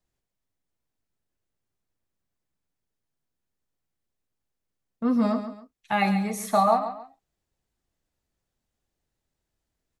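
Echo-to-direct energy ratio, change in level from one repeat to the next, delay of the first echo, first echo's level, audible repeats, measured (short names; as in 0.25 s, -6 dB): -10.0 dB, -10.0 dB, 0.137 s, -10.5 dB, 2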